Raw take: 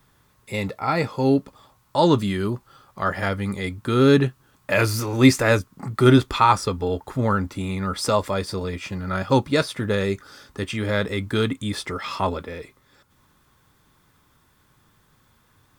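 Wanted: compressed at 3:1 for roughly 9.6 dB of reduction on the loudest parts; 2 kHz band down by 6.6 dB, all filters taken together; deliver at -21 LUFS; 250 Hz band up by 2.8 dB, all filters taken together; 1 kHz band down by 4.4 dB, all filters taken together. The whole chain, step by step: peaking EQ 250 Hz +3.5 dB; peaking EQ 1 kHz -3.5 dB; peaking EQ 2 kHz -7.5 dB; compression 3:1, threshold -20 dBFS; trim +5 dB

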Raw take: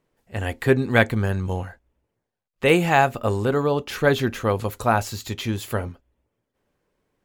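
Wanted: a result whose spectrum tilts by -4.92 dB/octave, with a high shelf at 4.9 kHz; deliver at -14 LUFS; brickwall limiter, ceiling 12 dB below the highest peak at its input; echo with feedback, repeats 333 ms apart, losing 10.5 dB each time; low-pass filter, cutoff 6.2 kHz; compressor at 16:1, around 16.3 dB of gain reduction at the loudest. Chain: low-pass 6.2 kHz; treble shelf 4.9 kHz -5 dB; compression 16:1, threshold -28 dBFS; peak limiter -27.5 dBFS; feedback delay 333 ms, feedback 30%, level -10.5 dB; trim +24 dB

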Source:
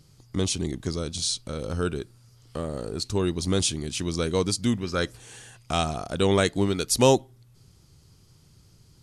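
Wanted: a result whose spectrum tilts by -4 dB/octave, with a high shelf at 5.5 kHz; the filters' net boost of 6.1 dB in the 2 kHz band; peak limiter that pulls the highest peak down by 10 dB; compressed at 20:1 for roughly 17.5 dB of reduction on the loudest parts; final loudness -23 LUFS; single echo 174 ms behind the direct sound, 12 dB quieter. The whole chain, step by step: peaking EQ 2 kHz +7.5 dB; treble shelf 5.5 kHz +5 dB; compression 20:1, threshold -29 dBFS; peak limiter -25.5 dBFS; delay 174 ms -12 dB; trim +14 dB

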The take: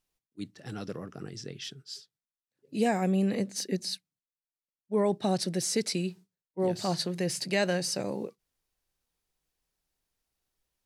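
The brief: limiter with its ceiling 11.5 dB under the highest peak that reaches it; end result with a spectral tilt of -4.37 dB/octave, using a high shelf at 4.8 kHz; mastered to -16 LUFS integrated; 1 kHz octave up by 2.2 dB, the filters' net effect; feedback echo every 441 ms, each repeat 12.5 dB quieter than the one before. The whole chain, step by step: peaking EQ 1 kHz +3.5 dB; treble shelf 4.8 kHz -6 dB; peak limiter -25.5 dBFS; feedback delay 441 ms, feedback 24%, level -12.5 dB; trim +21 dB

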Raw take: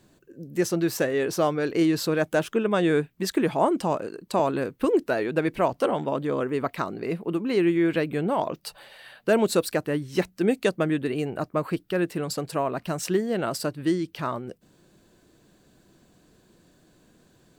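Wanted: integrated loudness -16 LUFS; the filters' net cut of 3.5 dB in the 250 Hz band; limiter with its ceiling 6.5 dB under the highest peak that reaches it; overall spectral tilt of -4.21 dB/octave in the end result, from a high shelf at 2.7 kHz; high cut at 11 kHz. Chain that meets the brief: low-pass 11 kHz; peaking EQ 250 Hz -5.5 dB; treble shelf 2.7 kHz +6 dB; trim +12 dB; peak limiter -3.5 dBFS

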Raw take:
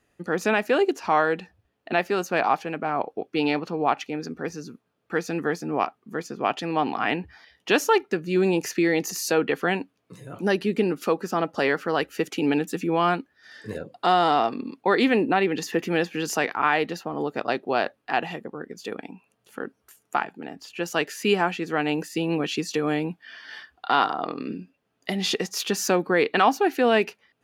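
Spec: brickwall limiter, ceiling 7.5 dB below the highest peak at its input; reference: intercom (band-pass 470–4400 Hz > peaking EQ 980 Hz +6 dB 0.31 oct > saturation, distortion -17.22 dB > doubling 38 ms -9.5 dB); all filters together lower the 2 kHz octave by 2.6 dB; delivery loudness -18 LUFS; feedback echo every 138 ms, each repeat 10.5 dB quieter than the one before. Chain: peaking EQ 2 kHz -3.5 dB; peak limiter -15.5 dBFS; band-pass 470–4400 Hz; peaking EQ 980 Hz +6 dB 0.31 oct; feedback delay 138 ms, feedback 30%, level -10.5 dB; saturation -18.5 dBFS; doubling 38 ms -9.5 dB; trim +13 dB

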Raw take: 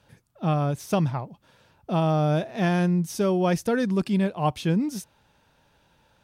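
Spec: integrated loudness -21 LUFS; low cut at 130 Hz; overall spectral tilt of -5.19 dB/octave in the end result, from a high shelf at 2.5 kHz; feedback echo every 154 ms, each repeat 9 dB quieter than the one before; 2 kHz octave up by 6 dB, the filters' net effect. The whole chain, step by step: high-pass 130 Hz; peaking EQ 2 kHz +4 dB; treble shelf 2.5 kHz +8.5 dB; feedback delay 154 ms, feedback 35%, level -9 dB; trim +3 dB

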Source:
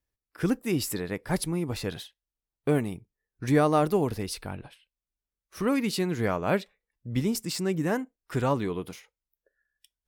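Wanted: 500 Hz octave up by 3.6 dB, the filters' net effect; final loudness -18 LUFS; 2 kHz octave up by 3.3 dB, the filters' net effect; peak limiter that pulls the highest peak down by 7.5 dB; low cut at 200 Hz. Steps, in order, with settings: high-pass 200 Hz; peaking EQ 500 Hz +4.5 dB; peaking EQ 2 kHz +4 dB; trim +11 dB; peak limiter -4 dBFS

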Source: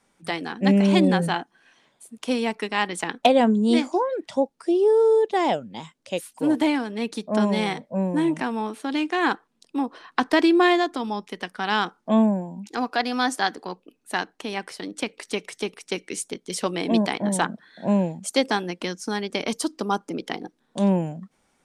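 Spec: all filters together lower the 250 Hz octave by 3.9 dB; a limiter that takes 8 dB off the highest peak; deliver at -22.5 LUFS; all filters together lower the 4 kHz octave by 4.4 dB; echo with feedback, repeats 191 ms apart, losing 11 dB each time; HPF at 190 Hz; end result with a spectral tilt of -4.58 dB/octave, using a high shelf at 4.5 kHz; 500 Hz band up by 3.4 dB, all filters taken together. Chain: high-pass 190 Hz; peaking EQ 250 Hz -5.5 dB; peaking EQ 500 Hz +6 dB; peaking EQ 4 kHz -7.5 dB; treble shelf 4.5 kHz +3 dB; peak limiter -11.5 dBFS; feedback delay 191 ms, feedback 28%, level -11 dB; trim +2 dB

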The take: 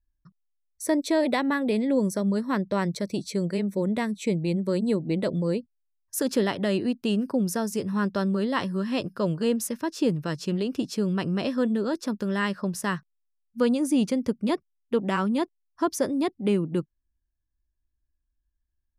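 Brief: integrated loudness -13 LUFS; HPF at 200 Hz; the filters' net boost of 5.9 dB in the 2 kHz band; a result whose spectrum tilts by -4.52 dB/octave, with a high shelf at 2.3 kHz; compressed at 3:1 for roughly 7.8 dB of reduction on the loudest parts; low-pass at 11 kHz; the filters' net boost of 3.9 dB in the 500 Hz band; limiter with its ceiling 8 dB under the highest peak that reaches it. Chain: high-pass 200 Hz; low-pass 11 kHz; peaking EQ 500 Hz +4.5 dB; peaking EQ 2 kHz +5 dB; treble shelf 2.3 kHz +4 dB; compression 3:1, threshold -26 dBFS; trim +18.5 dB; peak limiter -2.5 dBFS

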